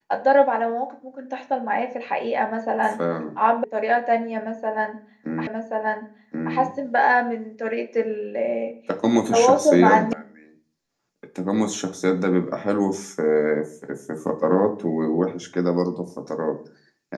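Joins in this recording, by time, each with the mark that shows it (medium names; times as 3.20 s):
3.64 s: sound stops dead
5.47 s: repeat of the last 1.08 s
10.13 s: sound stops dead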